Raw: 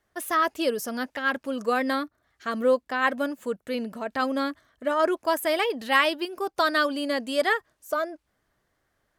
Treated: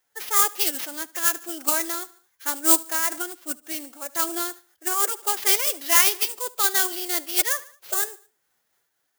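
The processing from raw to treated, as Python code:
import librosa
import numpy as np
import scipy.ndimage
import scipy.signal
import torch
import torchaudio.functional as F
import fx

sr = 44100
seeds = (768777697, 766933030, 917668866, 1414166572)

p1 = fx.sample_hold(x, sr, seeds[0], rate_hz=8400.0, jitter_pct=20)
p2 = fx.pitch_keep_formants(p1, sr, semitones=4.0)
p3 = fx.riaa(p2, sr, side='recording')
p4 = p3 + fx.echo_feedback(p3, sr, ms=74, feedback_pct=44, wet_db=-21.5, dry=0)
y = fx.am_noise(p4, sr, seeds[1], hz=5.7, depth_pct=65)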